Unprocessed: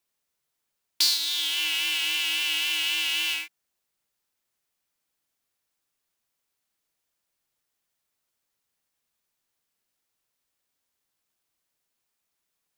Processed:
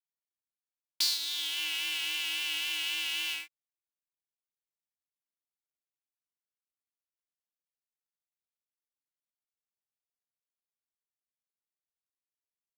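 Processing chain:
mu-law and A-law mismatch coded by A
level −6 dB

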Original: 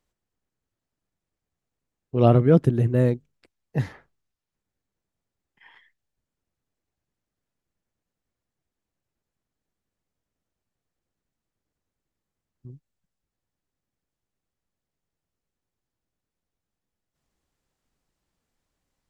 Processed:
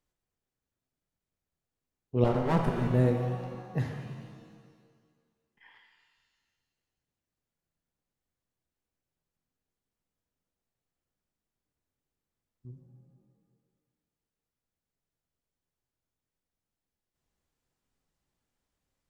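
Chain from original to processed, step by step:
0:02.24–0:02.88: lower of the sound and its delayed copy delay 5.2 ms
reverb with rising layers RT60 1.7 s, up +7 semitones, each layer −8 dB, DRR 3.5 dB
level −6 dB

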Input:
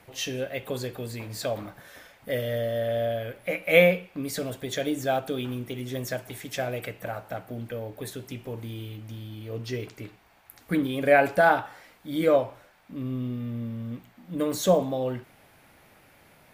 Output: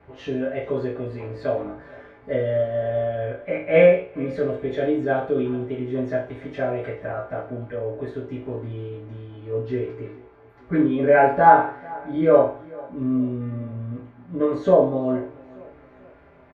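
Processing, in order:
low-pass filter 1,700 Hz 12 dB per octave
spectral tilt −1.5 dB per octave
repeating echo 441 ms, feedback 46%, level −22 dB
convolution reverb RT60 0.35 s, pre-delay 5 ms, DRR −8.5 dB
level −3.5 dB

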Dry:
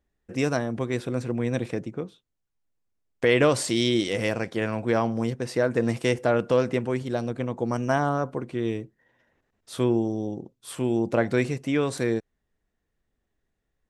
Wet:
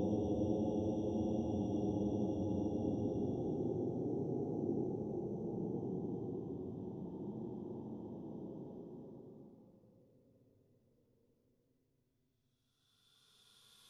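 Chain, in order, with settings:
every bin's largest magnitude spread in time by 60 ms
extreme stretch with random phases 45×, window 0.05 s, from 0:10.30
parametric band 8,300 Hz −10.5 dB 0.39 octaves
level −6.5 dB

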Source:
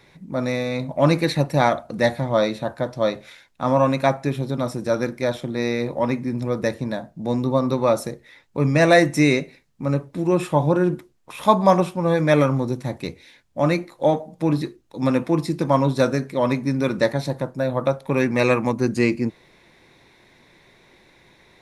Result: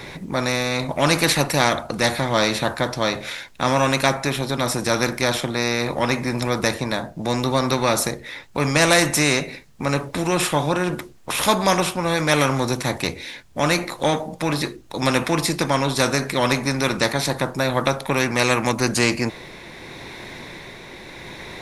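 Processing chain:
amplitude tremolo 0.79 Hz, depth 32%
every bin compressed towards the loudest bin 2 to 1
level +1 dB

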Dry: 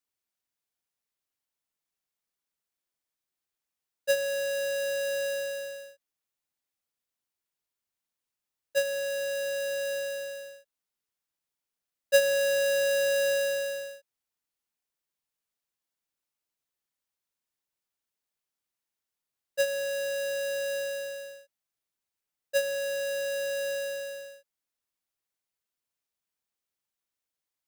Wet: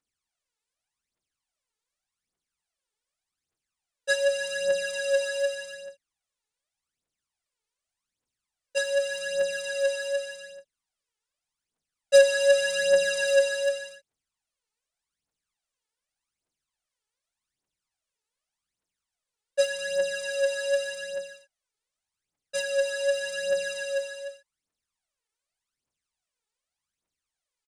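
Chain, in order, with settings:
downsampling to 22,050 Hz
phase shifter 0.85 Hz, delay 2.4 ms, feedback 72%

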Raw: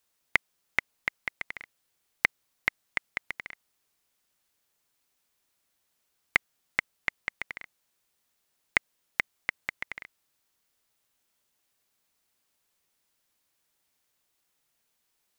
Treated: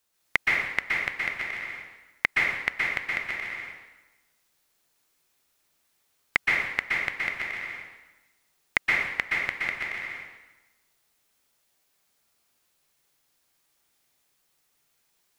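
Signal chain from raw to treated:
dense smooth reverb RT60 1.1 s, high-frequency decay 0.85×, pre-delay 110 ms, DRR −4 dB

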